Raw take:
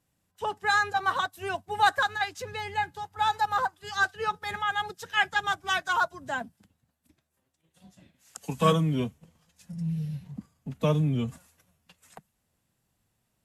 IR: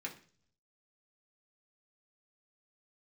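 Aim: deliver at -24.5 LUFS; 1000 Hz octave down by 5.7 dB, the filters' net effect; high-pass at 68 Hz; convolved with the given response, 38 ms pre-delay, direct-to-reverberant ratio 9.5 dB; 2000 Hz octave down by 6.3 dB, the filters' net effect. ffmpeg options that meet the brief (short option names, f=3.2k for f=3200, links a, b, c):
-filter_complex "[0:a]highpass=68,equalizer=f=1k:t=o:g=-6,equalizer=f=2k:t=o:g=-6,asplit=2[a][b];[1:a]atrim=start_sample=2205,adelay=38[c];[b][c]afir=irnorm=-1:irlink=0,volume=-9.5dB[d];[a][d]amix=inputs=2:normalize=0,volume=7.5dB"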